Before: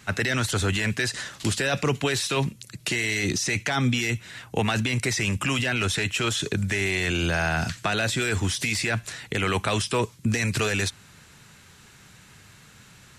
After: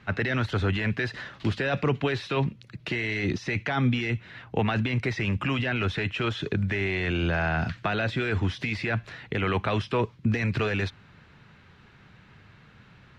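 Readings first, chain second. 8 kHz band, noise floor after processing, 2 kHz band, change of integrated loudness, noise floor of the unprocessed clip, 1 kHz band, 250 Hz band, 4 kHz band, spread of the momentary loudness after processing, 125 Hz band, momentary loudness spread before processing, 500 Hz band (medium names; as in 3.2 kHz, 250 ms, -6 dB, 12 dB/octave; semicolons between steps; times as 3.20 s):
under -20 dB, -55 dBFS, -3.5 dB, -2.5 dB, -52 dBFS, -1.5 dB, -0.5 dB, -8.0 dB, 5 LU, 0.0 dB, 4 LU, -1.0 dB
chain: distance through air 320 m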